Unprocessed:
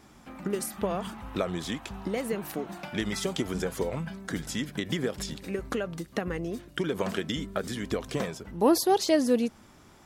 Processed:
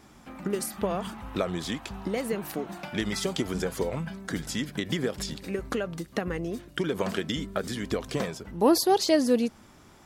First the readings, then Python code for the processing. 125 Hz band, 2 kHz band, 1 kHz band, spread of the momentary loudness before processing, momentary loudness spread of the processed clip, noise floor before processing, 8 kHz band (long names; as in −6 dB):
+1.0 dB, +1.0 dB, +1.0 dB, 12 LU, 12 LU, −55 dBFS, +1.0 dB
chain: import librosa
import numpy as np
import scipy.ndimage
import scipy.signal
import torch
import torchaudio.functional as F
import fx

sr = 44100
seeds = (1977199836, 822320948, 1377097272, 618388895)

y = fx.dynamic_eq(x, sr, hz=4600.0, q=5.5, threshold_db=-55.0, ratio=4.0, max_db=4)
y = y * librosa.db_to_amplitude(1.0)